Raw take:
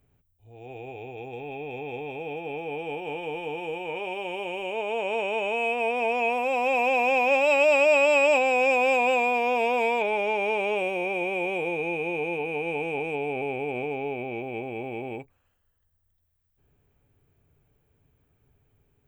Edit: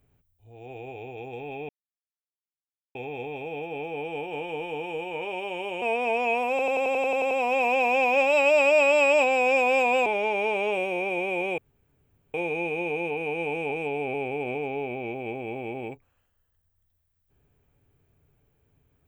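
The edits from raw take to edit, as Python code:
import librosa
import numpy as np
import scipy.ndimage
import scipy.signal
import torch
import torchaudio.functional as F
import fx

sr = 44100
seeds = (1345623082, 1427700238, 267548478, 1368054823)

y = fx.edit(x, sr, fx.insert_silence(at_s=1.69, length_s=1.26),
    fx.cut(start_s=4.56, length_s=1.21),
    fx.stutter(start_s=6.45, slice_s=0.09, count=10),
    fx.cut(start_s=9.2, length_s=0.9),
    fx.insert_room_tone(at_s=11.62, length_s=0.76), tone=tone)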